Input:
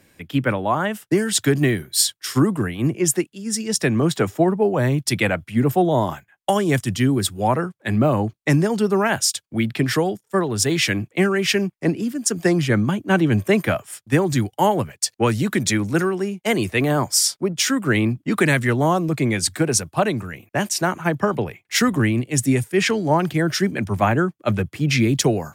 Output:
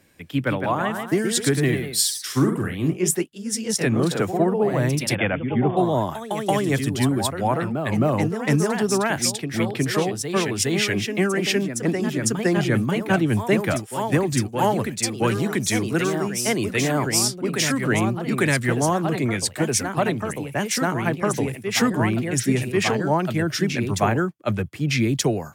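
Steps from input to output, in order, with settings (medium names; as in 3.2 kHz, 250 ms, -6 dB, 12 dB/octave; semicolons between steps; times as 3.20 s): ever faster or slower copies 186 ms, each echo +1 st, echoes 2, each echo -6 dB; 5.15–5.77 s: brick-wall FIR low-pass 3.6 kHz; trim -3 dB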